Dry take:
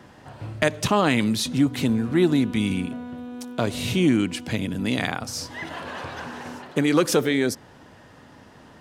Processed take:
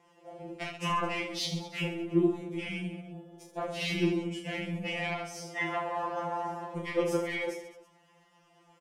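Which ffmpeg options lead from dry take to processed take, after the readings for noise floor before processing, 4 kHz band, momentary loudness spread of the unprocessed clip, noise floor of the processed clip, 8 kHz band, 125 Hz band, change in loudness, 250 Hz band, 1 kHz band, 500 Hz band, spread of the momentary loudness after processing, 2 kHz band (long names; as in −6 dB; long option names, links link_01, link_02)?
−49 dBFS, −8.0 dB, 15 LU, −64 dBFS, −13.0 dB, −10.5 dB, −9.0 dB, −11.5 dB, −4.5 dB, −8.0 dB, 14 LU, −6.5 dB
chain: -filter_complex "[0:a]aemphasis=mode=reproduction:type=cd,asplit=2[link_01][link_02];[link_02]highpass=frequency=720:poles=1,volume=9dB,asoftclip=type=tanh:threshold=-3.5dB[link_03];[link_01][link_03]amix=inputs=2:normalize=0,lowpass=frequency=4400:poles=1,volume=-6dB,equalizer=frequency=630:width_type=o:width=0.67:gain=4,equalizer=frequency=1600:width_type=o:width=0.67:gain=-6,equalizer=frequency=4000:width_type=o:width=0.67:gain=-11,asplit=2[link_04][link_05];[link_05]alimiter=limit=-16dB:level=0:latency=1,volume=1dB[link_06];[link_04][link_06]amix=inputs=2:normalize=0,acompressor=threshold=-24dB:ratio=2,aexciter=amount=2.8:drive=5.2:freq=2300,afwtdn=0.0501,asoftclip=type=tanh:threshold=-14.5dB,asplit=2[link_07][link_08];[link_08]aecho=0:1:30|72|130.8|213.1|328.4:0.631|0.398|0.251|0.158|0.1[link_09];[link_07][link_09]amix=inputs=2:normalize=0,afftfilt=real='re*2.83*eq(mod(b,8),0)':imag='im*2.83*eq(mod(b,8),0)':win_size=2048:overlap=0.75,volume=-5dB"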